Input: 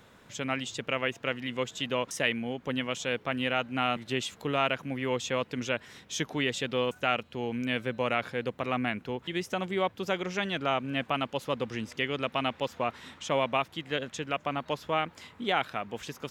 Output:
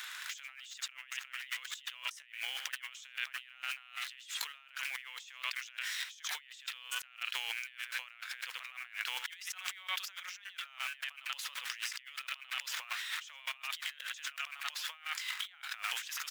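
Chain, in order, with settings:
in parallel at −6 dB: bit reduction 8 bits
on the sum: high-pass filter 1,500 Hz 24 dB per octave
single-tap delay 86 ms −19 dB
compressor whose output falls as the input rises −52 dBFS, ratio −1
level +5 dB

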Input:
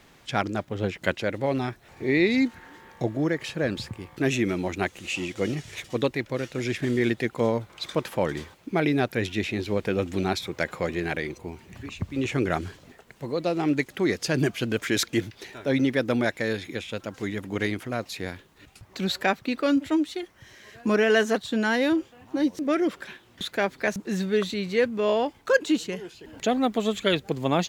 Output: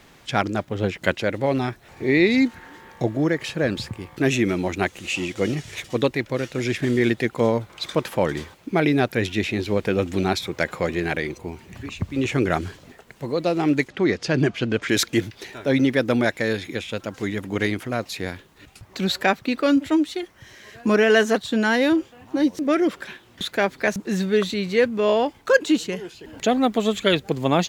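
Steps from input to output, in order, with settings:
0:13.88–0:14.89: high-frequency loss of the air 100 metres
level +4 dB

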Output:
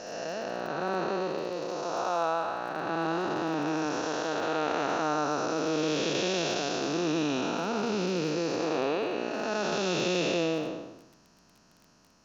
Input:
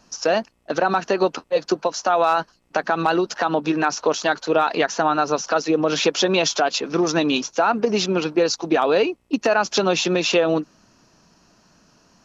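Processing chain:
spectrum smeared in time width 487 ms
surface crackle 20 per second −38 dBFS
level −3.5 dB

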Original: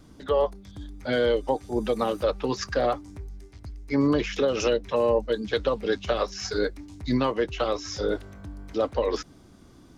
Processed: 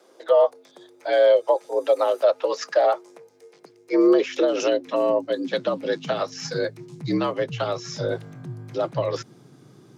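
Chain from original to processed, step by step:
high-pass filter sweep 460 Hz → 62 Hz, 0:03.26–0:07.24
frequency shifter +64 Hz

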